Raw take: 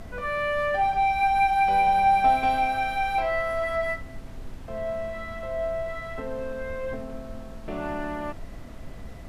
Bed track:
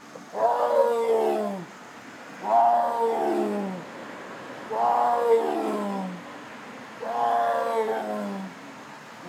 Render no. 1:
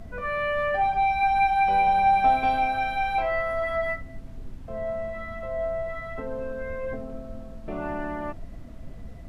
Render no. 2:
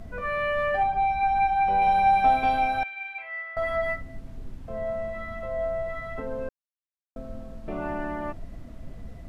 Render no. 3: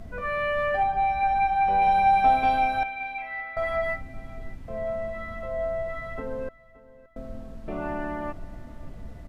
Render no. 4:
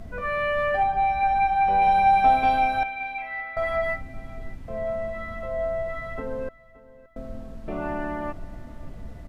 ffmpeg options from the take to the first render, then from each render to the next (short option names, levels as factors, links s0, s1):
-af "afftdn=nr=8:nf=-40"
-filter_complex "[0:a]asettb=1/sr,asplit=3[s0][s1][s2];[s0]atrim=end=0.834[s3];[s1]atrim=start=0.83:end=1.82,asetpts=PTS-STARTPTS,afade=t=in:d=0.004:c=qsin,afade=t=out:st=0.986:d=0.004:c=qsin,highshelf=f=2100:g=-9[s4];[s2]atrim=start=1.816[s5];[s3][s4]acrossfade=d=0.004:c1=hsin:c2=qsin[s6];[s6][s5]acrossfade=d=0.004:c1=qsin:c2=hsin,asettb=1/sr,asplit=3[s7][s8][s9];[s7]atrim=end=2.834[s10];[s8]atrim=start=2.83:end=3.57,asetpts=PTS-STARTPTS,afade=t=in:d=0.004:c=qsin,afade=t=out:st=0.736:d=0.004:c=qsin,bandpass=f=2200:t=q:w=4.2[s11];[s9]atrim=start=3.566[s12];[s10][s11]acrossfade=d=0.004:c1=hsin:c2=qsin[s13];[s13][s12]acrossfade=d=0.004:c1=qsin:c2=hsin,asplit=3[s14][s15][s16];[s14]atrim=end=6.49,asetpts=PTS-STARTPTS,afade=t=out:st=6.486:d=0.004:c=hsin[s17];[s15]atrim=start=6.49:end=7.16,asetpts=PTS-STARTPTS,volume=0[s18];[s16]atrim=start=7.16,asetpts=PTS-STARTPTS,afade=t=in:d=0.004:c=hsin[s19];[s17][s18][s19]concat=n=3:v=0:a=1"
-af "aecho=1:1:572|1144|1716:0.1|0.043|0.0185"
-af "volume=1.19"